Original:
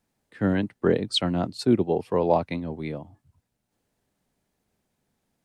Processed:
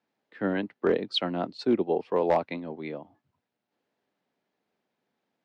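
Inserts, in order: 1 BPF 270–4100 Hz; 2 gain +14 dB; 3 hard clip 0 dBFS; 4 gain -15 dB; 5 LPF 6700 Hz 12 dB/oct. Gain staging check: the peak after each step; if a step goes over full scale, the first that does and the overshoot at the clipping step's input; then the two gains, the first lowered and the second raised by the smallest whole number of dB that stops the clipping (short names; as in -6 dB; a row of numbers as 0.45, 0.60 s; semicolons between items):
-7.5, +6.5, 0.0, -15.0, -15.0 dBFS; step 2, 6.5 dB; step 2 +7 dB, step 4 -8 dB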